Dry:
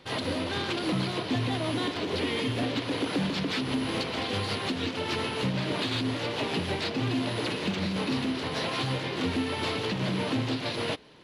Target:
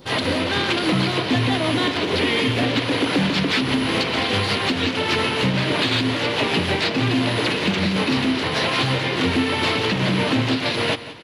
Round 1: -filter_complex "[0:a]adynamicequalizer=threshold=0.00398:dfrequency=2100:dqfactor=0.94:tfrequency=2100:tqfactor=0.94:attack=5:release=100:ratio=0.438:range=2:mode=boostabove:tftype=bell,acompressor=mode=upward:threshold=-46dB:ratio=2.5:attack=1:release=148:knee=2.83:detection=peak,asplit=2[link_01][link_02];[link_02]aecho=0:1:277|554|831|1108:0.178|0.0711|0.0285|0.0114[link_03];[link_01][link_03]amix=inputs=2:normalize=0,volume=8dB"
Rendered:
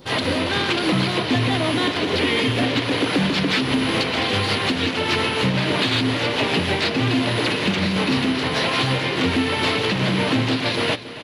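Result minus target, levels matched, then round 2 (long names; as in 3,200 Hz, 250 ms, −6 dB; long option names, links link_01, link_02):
echo 101 ms late
-filter_complex "[0:a]adynamicequalizer=threshold=0.00398:dfrequency=2100:dqfactor=0.94:tfrequency=2100:tqfactor=0.94:attack=5:release=100:ratio=0.438:range=2:mode=boostabove:tftype=bell,acompressor=mode=upward:threshold=-46dB:ratio=2.5:attack=1:release=148:knee=2.83:detection=peak,asplit=2[link_01][link_02];[link_02]aecho=0:1:176|352|528|704:0.178|0.0711|0.0285|0.0114[link_03];[link_01][link_03]amix=inputs=2:normalize=0,volume=8dB"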